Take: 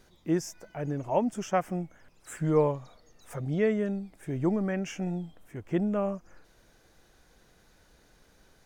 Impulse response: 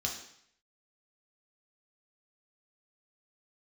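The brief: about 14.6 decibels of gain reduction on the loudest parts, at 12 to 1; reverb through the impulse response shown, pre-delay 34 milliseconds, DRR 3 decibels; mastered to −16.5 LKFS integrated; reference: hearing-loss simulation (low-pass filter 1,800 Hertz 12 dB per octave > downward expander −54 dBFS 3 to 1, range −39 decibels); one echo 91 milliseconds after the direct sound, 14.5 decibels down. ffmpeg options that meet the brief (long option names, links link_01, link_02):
-filter_complex "[0:a]acompressor=threshold=-34dB:ratio=12,aecho=1:1:91:0.188,asplit=2[link_01][link_02];[1:a]atrim=start_sample=2205,adelay=34[link_03];[link_02][link_03]afir=irnorm=-1:irlink=0,volume=-6.5dB[link_04];[link_01][link_04]amix=inputs=2:normalize=0,lowpass=1800,agate=range=-39dB:threshold=-54dB:ratio=3,volume=21.5dB"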